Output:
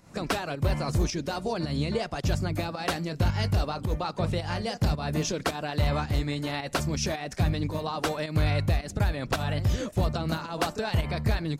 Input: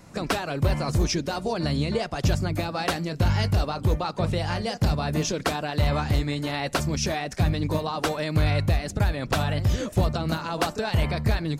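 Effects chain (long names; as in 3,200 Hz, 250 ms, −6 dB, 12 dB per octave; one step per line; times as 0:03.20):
fake sidechain pumping 109 BPM, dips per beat 1, −9 dB, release 173 ms
level −2.5 dB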